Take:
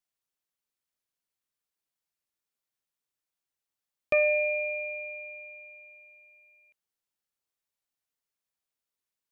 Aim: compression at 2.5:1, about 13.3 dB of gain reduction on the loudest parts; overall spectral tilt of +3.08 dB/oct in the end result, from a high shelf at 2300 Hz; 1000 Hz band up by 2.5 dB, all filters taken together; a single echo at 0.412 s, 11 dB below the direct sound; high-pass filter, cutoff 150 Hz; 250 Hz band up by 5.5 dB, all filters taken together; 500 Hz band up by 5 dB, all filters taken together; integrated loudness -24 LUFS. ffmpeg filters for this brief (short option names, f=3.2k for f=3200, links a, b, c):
-af "highpass=150,equalizer=f=250:t=o:g=6,equalizer=f=500:t=o:g=4.5,equalizer=f=1k:t=o:g=4,highshelf=f=2.3k:g=-7.5,acompressor=threshold=-38dB:ratio=2.5,aecho=1:1:412:0.282,volume=13dB"